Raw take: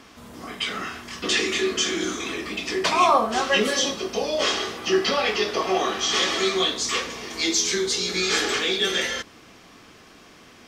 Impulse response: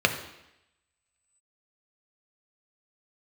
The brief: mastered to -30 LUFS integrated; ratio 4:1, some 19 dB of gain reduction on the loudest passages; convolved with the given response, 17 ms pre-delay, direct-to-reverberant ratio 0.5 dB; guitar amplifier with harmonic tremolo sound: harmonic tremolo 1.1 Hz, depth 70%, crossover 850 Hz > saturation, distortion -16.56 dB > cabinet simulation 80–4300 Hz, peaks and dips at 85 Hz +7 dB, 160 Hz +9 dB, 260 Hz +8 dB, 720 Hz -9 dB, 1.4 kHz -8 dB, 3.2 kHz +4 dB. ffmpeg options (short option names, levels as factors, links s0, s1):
-filter_complex "[0:a]acompressor=threshold=0.0126:ratio=4,asplit=2[s0][s1];[1:a]atrim=start_sample=2205,adelay=17[s2];[s1][s2]afir=irnorm=-1:irlink=0,volume=0.158[s3];[s0][s3]amix=inputs=2:normalize=0,acrossover=split=850[s4][s5];[s4]aeval=exprs='val(0)*(1-0.7/2+0.7/2*cos(2*PI*1.1*n/s))':c=same[s6];[s5]aeval=exprs='val(0)*(1-0.7/2-0.7/2*cos(2*PI*1.1*n/s))':c=same[s7];[s6][s7]amix=inputs=2:normalize=0,asoftclip=threshold=0.0224,highpass=80,equalizer=f=85:t=q:w=4:g=7,equalizer=f=160:t=q:w=4:g=9,equalizer=f=260:t=q:w=4:g=8,equalizer=f=720:t=q:w=4:g=-9,equalizer=f=1400:t=q:w=4:g=-8,equalizer=f=3200:t=q:w=4:g=4,lowpass=f=4300:w=0.5412,lowpass=f=4300:w=1.3066,volume=3.16"